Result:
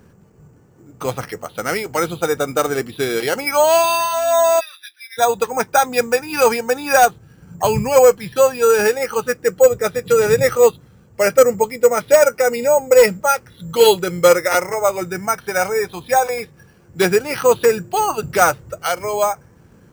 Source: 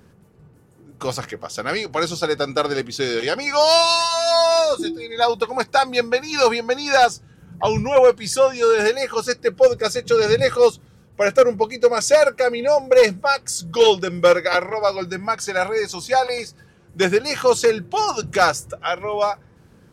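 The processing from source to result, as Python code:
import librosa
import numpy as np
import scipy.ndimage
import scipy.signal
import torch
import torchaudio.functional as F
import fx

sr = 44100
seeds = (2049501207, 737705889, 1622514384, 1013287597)

y = fx.cheby1_bandpass(x, sr, low_hz=1700.0, high_hz=4100.0, order=3, at=(4.59, 5.17), fade=0.02)
y = np.repeat(scipy.signal.resample_poly(y, 1, 6), 6)[:len(y)]
y = y * librosa.db_to_amplitude(2.5)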